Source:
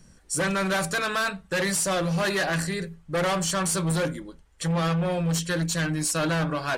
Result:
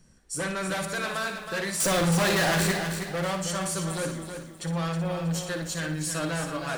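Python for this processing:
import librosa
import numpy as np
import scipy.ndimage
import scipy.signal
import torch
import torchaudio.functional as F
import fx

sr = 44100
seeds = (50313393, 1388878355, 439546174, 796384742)

y = fx.leveller(x, sr, passes=5, at=(1.8, 2.72))
y = fx.room_flutter(y, sr, wall_m=10.1, rt60_s=0.42)
y = fx.echo_crushed(y, sr, ms=319, feedback_pct=35, bits=8, wet_db=-7.0)
y = y * 10.0 ** (-5.5 / 20.0)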